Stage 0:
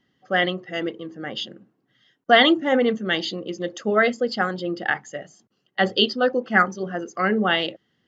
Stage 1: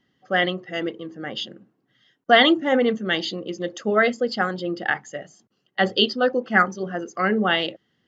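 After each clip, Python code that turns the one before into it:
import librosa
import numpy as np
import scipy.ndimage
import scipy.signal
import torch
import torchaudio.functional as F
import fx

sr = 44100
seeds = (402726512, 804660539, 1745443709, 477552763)

y = x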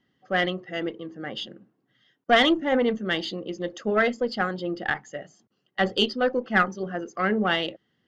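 y = fx.diode_clip(x, sr, knee_db=-11.0)
y = fx.high_shelf(y, sr, hz=6300.0, db=-7.5)
y = y * librosa.db_to_amplitude(-2.0)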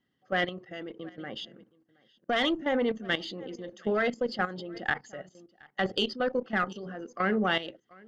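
y = x + 10.0 ** (-22.5 / 20.0) * np.pad(x, (int(722 * sr / 1000.0), 0))[:len(x)]
y = fx.level_steps(y, sr, step_db=13)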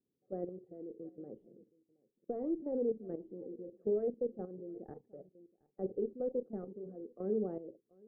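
y = fx.ladder_lowpass(x, sr, hz=500.0, resonance_pct=55)
y = y * librosa.db_to_amplitude(-1.0)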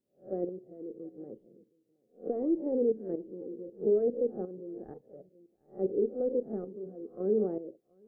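y = fx.spec_swells(x, sr, rise_s=0.31)
y = fx.dynamic_eq(y, sr, hz=360.0, q=0.84, threshold_db=-47.0, ratio=4.0, max_db=7)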